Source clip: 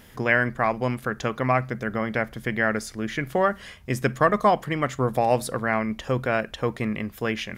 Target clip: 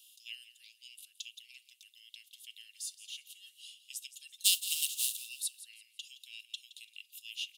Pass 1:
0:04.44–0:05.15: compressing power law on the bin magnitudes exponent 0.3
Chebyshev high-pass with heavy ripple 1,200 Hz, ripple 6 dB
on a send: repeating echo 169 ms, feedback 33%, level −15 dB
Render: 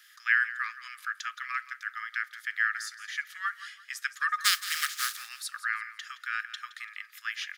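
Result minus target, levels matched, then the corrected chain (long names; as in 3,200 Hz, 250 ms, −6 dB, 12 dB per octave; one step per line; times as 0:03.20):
2,000 Hz band +17.0 dB
0:04.44–0:05.15: compressing power law on the bin magnitudes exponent 0.3
Chebyshev high-pass with heavy ripple 2,700 Hz, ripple 6 dB
on a send: repeating echo 169 ms, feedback 33%, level −15 dB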